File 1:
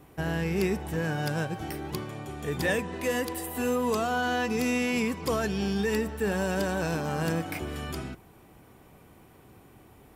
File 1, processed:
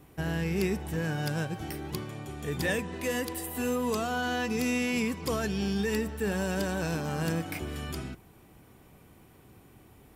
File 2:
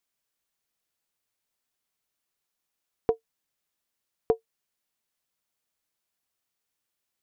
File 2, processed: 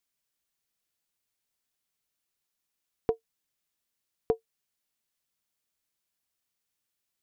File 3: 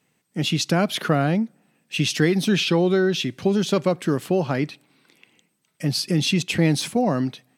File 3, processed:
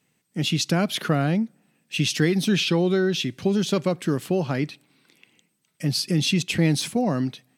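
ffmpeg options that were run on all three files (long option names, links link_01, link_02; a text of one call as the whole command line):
ffmpeg -i in.wav -af "equalizer=frequency=790:width=0.5:gain=-4" out.wav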